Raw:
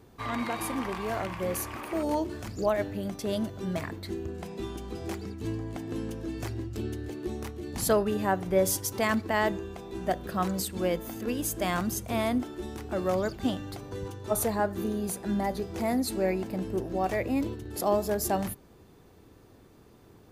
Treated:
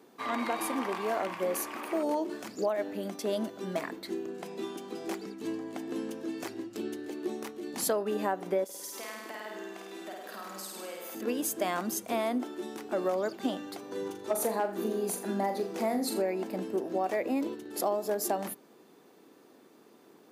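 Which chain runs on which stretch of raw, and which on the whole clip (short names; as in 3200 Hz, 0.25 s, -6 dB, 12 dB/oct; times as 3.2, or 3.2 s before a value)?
8.64–11.15 HPF 970 Hz 6 dB/oct + compressor, threshold -40 dBFS + flutter echo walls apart 8.8 m, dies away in 1.2 s
13.85–16.22 hard clip -19.5 dBFS + flutter echo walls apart 7 m, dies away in 0.32 s
whole clip: HPF 220 Hz 24 dB/oct; dynamic EQ 640 Hz, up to +4 dB, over -35 dBFS, Q 0.71; compressor 6:1, threshold -26 dBFS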